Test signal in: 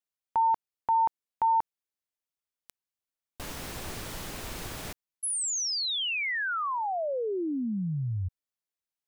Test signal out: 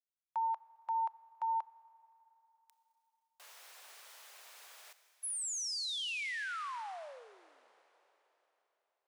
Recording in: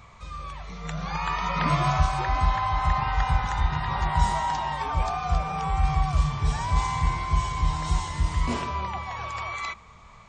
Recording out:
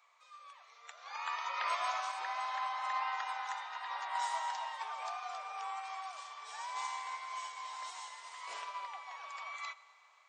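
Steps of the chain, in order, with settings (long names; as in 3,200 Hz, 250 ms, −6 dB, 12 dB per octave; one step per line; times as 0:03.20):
Bessel high-pass filter 890 Hz, order 8
four-comb reverb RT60 3.9 s, combs from 27 ms, DRR 11.5 dB
expander for the loud parts 1.5 to 1, over −42 dBFS
level −6 dB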